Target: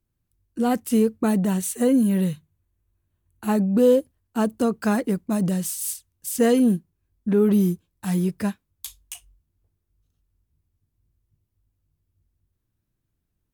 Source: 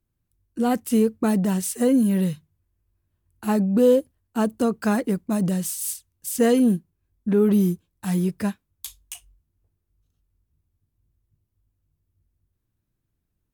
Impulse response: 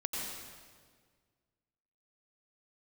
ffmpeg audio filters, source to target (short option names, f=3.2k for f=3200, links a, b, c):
-filter_complex "[0:a]asettb=1/sr,asplit=3[a][b][c];[a]atrim=end=1.214[d];[b]atrim=start=1.21:end=3.64,asetpts=PTS-STARTPTS,afade=t=in:d=0.004:c=qsin,afade=t=out:st=2.426:d=0.004:c=qsin,bandreject=f=5.1k:w=5.7[e];[c]atrim=start=3.636[f];[d][e]acrossfade=d=0.004:c1=hsin:c2=qsin[g];[g][f]acrossfade=d=0.004:c1=qsin:c2=hsin"